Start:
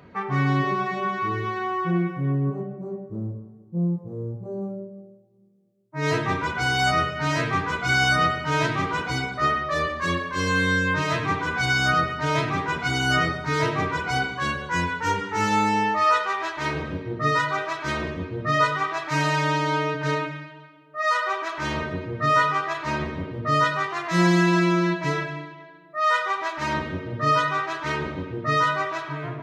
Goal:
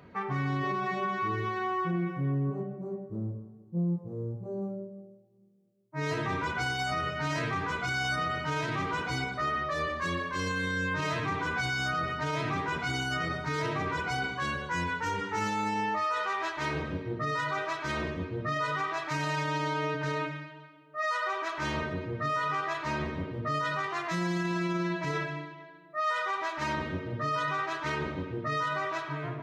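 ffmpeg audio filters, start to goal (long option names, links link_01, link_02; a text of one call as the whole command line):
ffmpeg -i in.wav -af "alimiter=limit=-19dB:level=0:latency=1:release=30,volume=-4dB" out.wav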